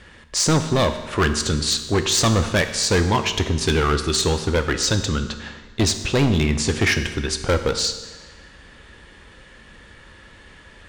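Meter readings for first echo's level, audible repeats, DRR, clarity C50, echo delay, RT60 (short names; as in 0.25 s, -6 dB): none, none, 8.0 dB, 10.0 dB, none, 1.4 s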